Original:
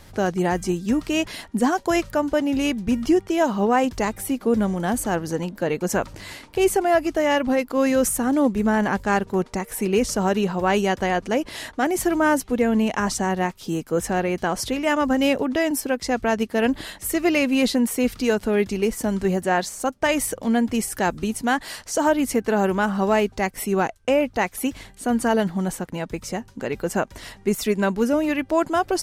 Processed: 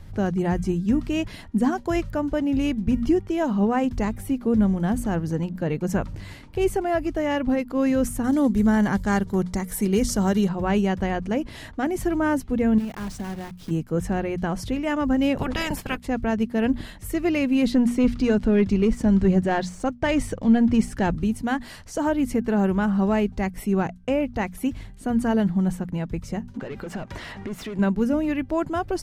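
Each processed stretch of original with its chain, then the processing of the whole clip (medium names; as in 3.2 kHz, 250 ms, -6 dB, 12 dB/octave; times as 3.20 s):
8.24–10.49 s: treble shelf 3 kHz +11.5 dB + band-stop 2.6 kHz, Q 5.7
12.78–13.71 s: block-companded coder 3-bit + compression 3:1, threshold -29 dBFS
15.36–16.06 s: spectral peaks clipped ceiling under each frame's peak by 24 dB + band-stop 6 kHz, Q 16 + expander -27 dBFS
17.72–21.16 s: low-pass 7.3 kHz + waveshaping leveller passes 1
26.54–27.79 s: overdrive pedal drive 27 dB, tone 2.3 kHz, clips at -8.5 dBFS + compression 8:1, threshold -28 dBFS
whole clip: tone controls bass +14 dB, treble -5 dB; hum notches 60/120/180/240 Hz; trim -6 dB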